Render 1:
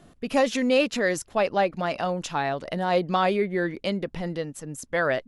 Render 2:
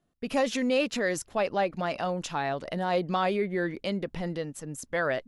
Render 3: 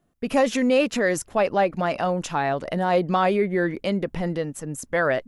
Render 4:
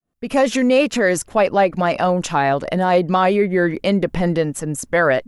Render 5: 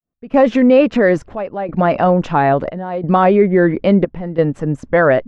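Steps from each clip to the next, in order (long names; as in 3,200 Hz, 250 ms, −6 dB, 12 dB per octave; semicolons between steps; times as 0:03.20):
in parallel at −3 dB: brickwall limiter −21.5 dBFS, peak gain reduction 11 dB; on the sum: noise gate with hold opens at −38 dBFS; level −6.5 dB
parametric band 4,100 Hz −5.5 dB 1.2 octaves; level +6.5 dB
fade in at the beginning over 0.52 s; in parallel at −0.5 dB: speech leveller within 5 dB 0.5 s
gate pattern "..xxxxxx" 89 BPM −12 dB; head-to-tape spacing loss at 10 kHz 36 dB; level +6.5 dB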